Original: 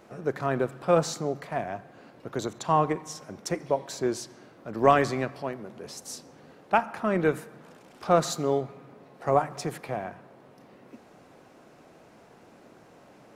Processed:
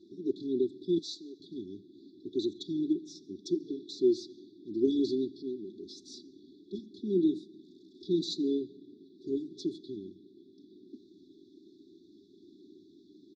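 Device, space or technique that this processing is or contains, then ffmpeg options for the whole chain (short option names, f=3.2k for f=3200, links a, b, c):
kitchen radio: -filter_complex "[0:a]asettb=1/sr,asplit=3[a][b][c];[a]atrim=end=0.984[d];[b]atrim=start=0.98:end=1.4,asetpts=PTS-STARTPTS,afade=t=in:d=0.004:c=qsin,afade=t=out:st=0.416:d=0.004:c=qsin,highpass=f=1.4k:p=1[e];[c]atrim=start=1.396[f];[d][e]acrossfade=d=0.004:c1=hsin:c2=qsin[g];[g][f]acrossfade=d=0.004:c1=qsin:c2=hsin,afftfilt=real='re*(1-between(b*sr/4096,440,3400))':imag='im*(1-between(b*sr/4096,440,3400))':win_size=4096:overlap=0.75,highpass=170,equalizer=f=230:t=q:w=4:g=-9,equalizer=f=410:t=q:w=4:g=5,equalizer=f=650:t=q:w=4:g=-4,equalizer=f=1.1k:t=q:w=4:g=-9,equalizer=f=2k:t=q:w=4:g=6,lowpass=f=4.1k:w=0.5412,lowpass=f=4.1k:w=1.3066,aecho=1:1:3.5:0.92"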